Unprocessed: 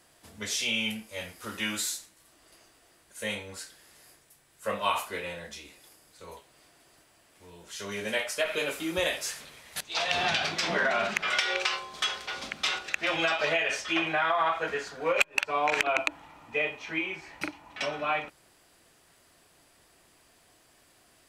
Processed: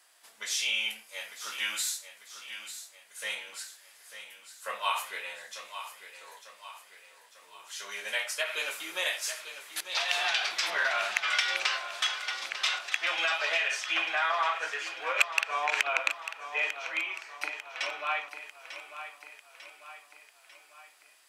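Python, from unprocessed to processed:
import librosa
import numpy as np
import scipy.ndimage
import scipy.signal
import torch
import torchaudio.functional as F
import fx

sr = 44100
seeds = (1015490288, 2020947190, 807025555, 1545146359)

y = scipy.signal.sosfilt(scipy.signal.butter(2, 930.0, 'highpass', fs=sr, output='sos'), x)
y = fx.echo_feedback(y, sr, ms=896, feedback_pct=51, wet_db=-11)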